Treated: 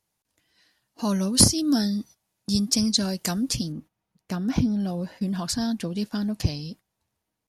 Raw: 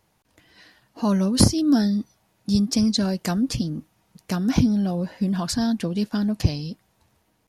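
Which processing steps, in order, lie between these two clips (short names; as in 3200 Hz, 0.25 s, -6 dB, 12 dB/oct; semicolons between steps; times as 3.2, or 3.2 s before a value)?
bell 9800 Hz +10.5 dB 2.5 oct, from 3.72 s -3.5 dB, from 4.8 s +4.5 dB; gate -40 dBFS, range -12 dB; gain -4 dB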